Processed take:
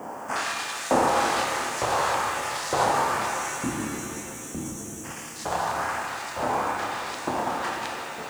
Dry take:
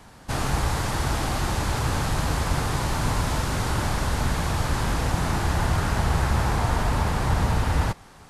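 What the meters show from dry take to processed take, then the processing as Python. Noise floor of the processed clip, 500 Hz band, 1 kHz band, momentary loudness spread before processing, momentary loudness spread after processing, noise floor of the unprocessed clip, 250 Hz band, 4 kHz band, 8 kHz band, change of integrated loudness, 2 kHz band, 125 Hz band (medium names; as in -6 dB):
-38 dBFS, +2.5 dB, +2.5 dB, 2 LU, 11 LU, -48 dBFS, -4.0 dB, -1.5 dB, +1.0 dB, -2.0 dB, +1.0 dB, -18.0 dB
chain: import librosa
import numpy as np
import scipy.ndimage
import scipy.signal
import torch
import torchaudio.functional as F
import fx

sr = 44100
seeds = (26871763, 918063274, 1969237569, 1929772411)

y = fx.over_compress(x, sr, threshold_db=-26.0, ratio=-0.5)
y = fx.graphic_eq_10(y, sr, hz=(250, 500, 2000, 8000), db=(10, 3, -5, 7))
y = 10.0 ** (-20.5 / 20.0) * np.tanh(y / 10.0 ** (-20.5 / 20.0))
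y = fx.riaa(y, sr, side='playback')
y = fx.doubler(y, sr, ms=28.0, db=-2.5)
y = fx.filter_lfo_notch(y, sr, shape='square', hz=1.4, low_hz=260.0, high_hz=3900.0, q=0.78)
y = scipy.signal.sosfilt(scipy.signal.butter(2, 11000.0, 'lowpass', fs=sr, output='sos'), y)
y = fx.spec_box(y, sr, start_s=3.26, length_s=1.79, low_hz=350.0, high_hz=5500.0, gain_db=-29)
y = fx.filter_lfo_highpass(y, sr, shape='saw_up', hz=1.1, low_hz=520.0, high_hz=5900.0, q=1.3)
y = fx.dmg_noise_colour(y, sr, seeds[0], colour='violet', level_db=-67.0)
y = fx.rev_shimmer(y, sr, seeds[1], rt60_s=3.2, semitones=7, shimmer_db=-8, drr_db=-0.5)
y = F.gain(torch.from_numpy(y), 6.0).numpy()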